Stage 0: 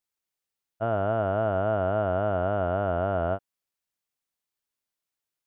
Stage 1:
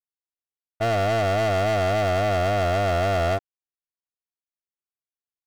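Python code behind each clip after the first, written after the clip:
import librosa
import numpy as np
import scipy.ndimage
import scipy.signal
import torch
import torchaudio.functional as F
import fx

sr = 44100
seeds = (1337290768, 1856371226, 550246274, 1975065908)

y = fx.lowpass(x, sr, hz=1400.0, slope=6)
y = y + 0.52 * np.pad(y, (int(2.7 * sr / 1000.0), 0))[:len(y)]
y = fx.leveller(y, sr, passes=5)
y = y * librosa.db_to_amplitude(-4.0)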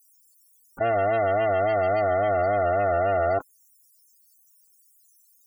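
y = fx.bass_treble(x, sr, bass_db=-9, treble_db=8)
y = fx.spec_topn(y, sr, count=32)
y = fx.env_flatten(y, sr, amount_pct=100)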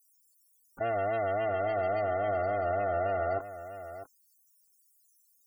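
y = x + 10.0 ** (-12.5 / 20.0) * np.pad(x, (int(649 * sr / 1000.0), 0))[:len(x)]
y = y * librosa.db_to_amplitude(-7.5)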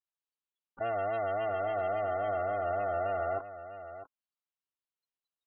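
y = scipy.signal.sosfilt(scipy.signal.cheby1(6, 6, 4100.0, 'lowpass', fs=sr, output='sos'), x)
y = y * librosa.db_to_amplitude(1.0)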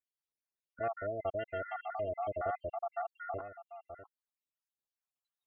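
y = fx.spec_dropout(x, sr, seeds[0], share_pct=72)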